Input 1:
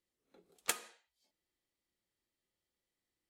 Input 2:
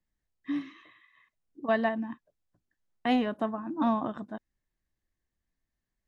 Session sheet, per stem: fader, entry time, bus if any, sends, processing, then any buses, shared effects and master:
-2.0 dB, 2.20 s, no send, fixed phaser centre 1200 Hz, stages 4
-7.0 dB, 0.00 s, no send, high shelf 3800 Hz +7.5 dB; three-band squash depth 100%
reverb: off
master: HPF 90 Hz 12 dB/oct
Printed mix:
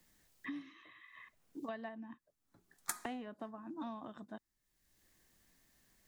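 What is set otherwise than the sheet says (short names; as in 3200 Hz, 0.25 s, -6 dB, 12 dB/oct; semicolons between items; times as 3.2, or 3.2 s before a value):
stem 2 -7.0 dB -> -15.0 dB; master: missing HPF 90 Hz 12 dB/oct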